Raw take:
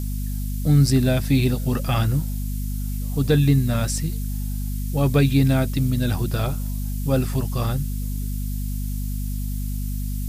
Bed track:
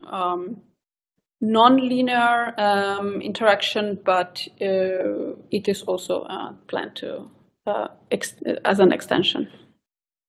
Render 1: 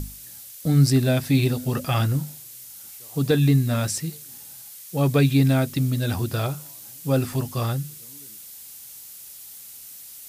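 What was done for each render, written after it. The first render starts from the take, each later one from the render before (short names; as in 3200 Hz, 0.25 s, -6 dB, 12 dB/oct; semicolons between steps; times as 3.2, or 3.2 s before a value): notches 50/100/150/200/250 Hz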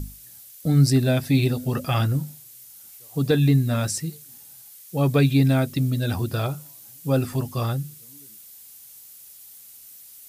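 denoiser 6 dB, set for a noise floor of -42 dBFS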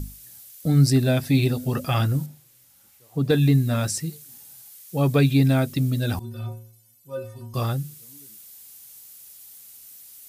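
2.26–3.3 high shelf 3300 Hz -11.5 dB; 6.19–7.54 metallic resonator 110 Hz, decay 0.67 s, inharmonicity 0.03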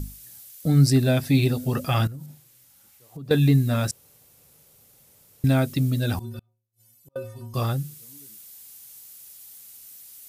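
2.07–3.31 compressor 8:1, threshold -34 dBFS; 3.91–5.44 room tone; 6.39–7.16 flipped gate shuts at -40 dBFS, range -37 dB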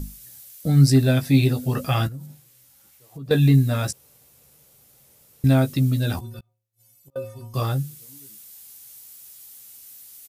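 doubler 15 ms -7 dB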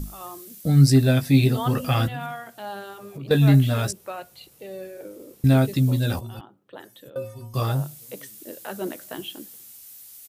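add bed track -15.5 dB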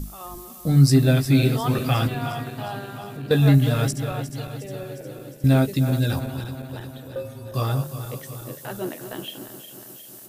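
regenerating reverse delay 0.179 s, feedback 77%, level -10.5 dB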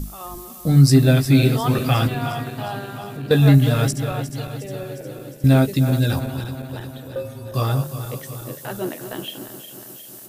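gain +3 dB; limiter -3 dBFS, peak gain reduction 1 dB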